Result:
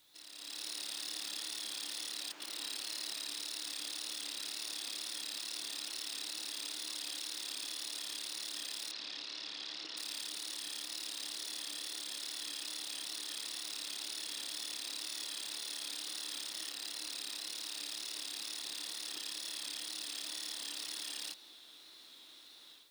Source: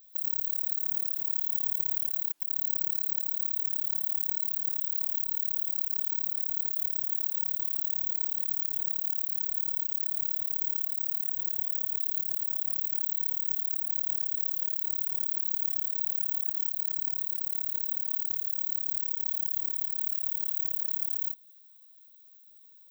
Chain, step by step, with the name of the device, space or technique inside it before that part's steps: dictaphone (BPF 280–3700 Hz; AGC gain up to 13 dB; wow and flutter; white noise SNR 28 dB); 8.91–9.97 LPF 5300 Hz 24 dB/oct; gain +12.5 dB

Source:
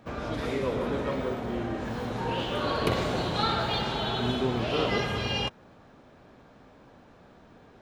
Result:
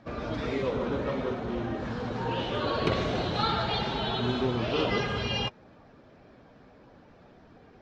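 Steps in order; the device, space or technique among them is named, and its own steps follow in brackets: clip after many re-uploads (LPF 6100 Hz 24 dB/oct; bin magnitudes rounded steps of 15 dB)

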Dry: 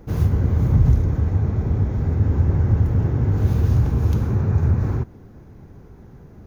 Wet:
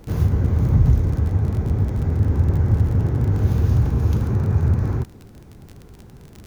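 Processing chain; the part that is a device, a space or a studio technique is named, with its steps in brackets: vinyl LP (crackle 33/s -29 dBFS; pink noise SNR 43 dB)

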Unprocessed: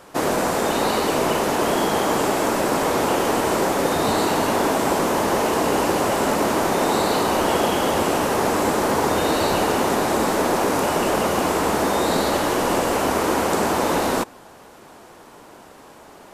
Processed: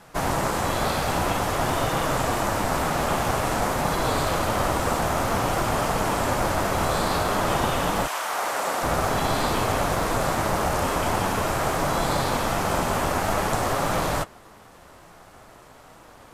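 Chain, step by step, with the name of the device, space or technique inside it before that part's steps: alien voice (ring modulator 330 Hz; flange 0.5 Hz, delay 5.9 ms, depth 6.8 ms, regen -56%); 8.06–8.82 HPF 1100 Hz -> 320 Hz 12 dB/oct; gain +3.5 dB

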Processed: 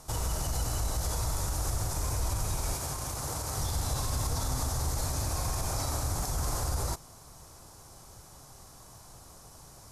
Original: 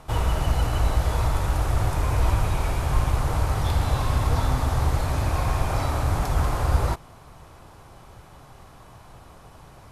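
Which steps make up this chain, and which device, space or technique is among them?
over-bright horn tweeter (resonant high shelf 4100 Hz +12.5 dB, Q 1.5; limiter -16 dBFS, peak gain reduction 8 dB); 2.73–3.58 HPF 130 Hz 6 dB/oct; gain -6 dB

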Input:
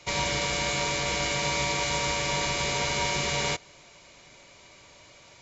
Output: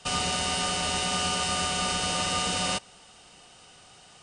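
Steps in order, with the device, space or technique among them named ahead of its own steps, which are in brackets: nightcore (varispeed +28%)

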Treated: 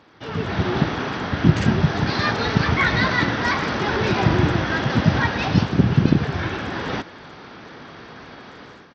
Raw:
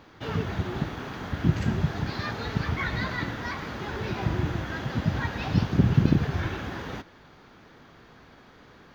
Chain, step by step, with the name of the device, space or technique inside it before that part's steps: Bluetooth headset (HPF 140 Hz 6 dB/oct; AGC gain up to 13 dB; downsampling 16000 Hz; SBC 64 kbps 32000 Hz)

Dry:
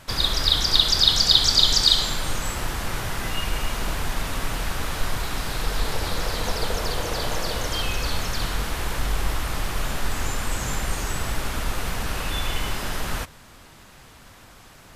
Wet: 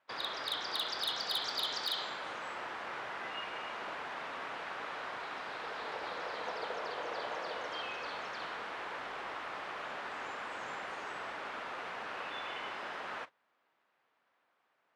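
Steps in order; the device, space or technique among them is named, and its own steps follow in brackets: walkie-talkie (BPF 500–2300 Hz; hard clip -21 dBFS, distortion -17 dB; gate -39 dBFS, range -17 dB); gain -7 dB

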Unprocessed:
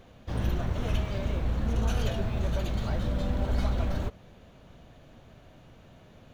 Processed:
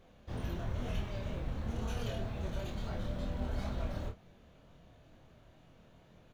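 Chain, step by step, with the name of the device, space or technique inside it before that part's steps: double-tracked vocal (doubler 29 ms -8.5 dB; chorus 2.1 Hz, depth 4.6 ms); gain -5 dB

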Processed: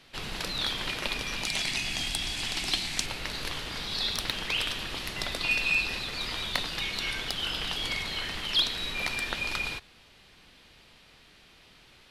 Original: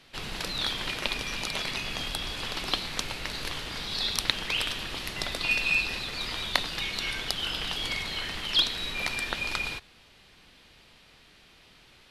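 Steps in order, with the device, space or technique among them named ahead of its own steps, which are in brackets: saturation between pre-emphasis and de-emphasis (high shelf 3000 Hz +11.5 dB; soft clip -9.5 dBFS, distortion -15 dB; high shelf 3000 Hz -11.5 dB); 1.45–3.06 EQ curve 330 Hz 0 dB, 500 Hz -9 dB, 720 Hz 0 dB, 1200 Hz -6 dB, 2100 Hz +3 dB, 3800 Hz +2 dB, 8200 Hz +9 dB, 14000 Hz -1 dB

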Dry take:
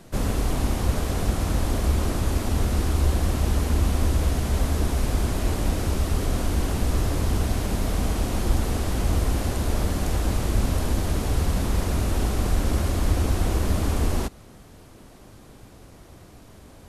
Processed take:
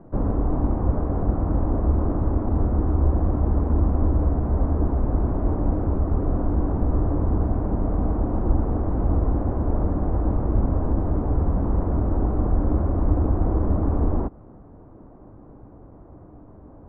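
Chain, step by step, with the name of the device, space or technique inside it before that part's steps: under water (LPF 1100 Hz 24 dB/oct; bell 300 Hz +6 dB 0.21 oct); gain +1.5 dB

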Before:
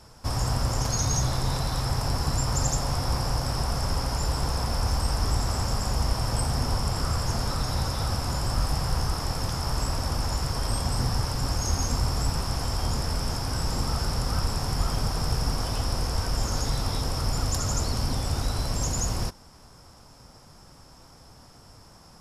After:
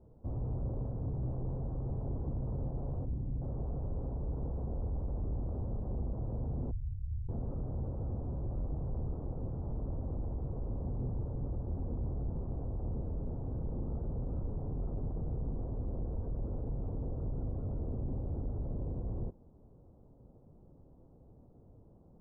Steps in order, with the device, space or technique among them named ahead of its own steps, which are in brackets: 3.05–3.42 spectral gain 340–1900 Hz -12 dB; overdriven synthesiser ladder filter (soft clip -24 dBFS, distortion -13 dB; ladder low-pass 600 Hz, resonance 25%); 6.71–7.29 inverse Chebyshev band-stop 220–4600 Hz, stop band 40 dB

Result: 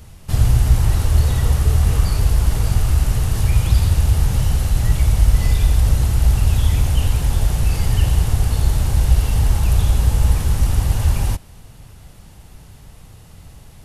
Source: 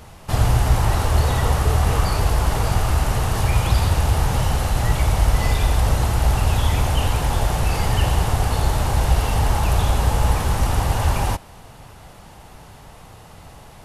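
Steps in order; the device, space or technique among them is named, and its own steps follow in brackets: smiley-face EQ (low shelf 170 Hz +8.5 dB; bell 860 Hz -7 dB 1.6 oct; high shelf 5700 Hz +5.5 dB); gain -3.5 dB

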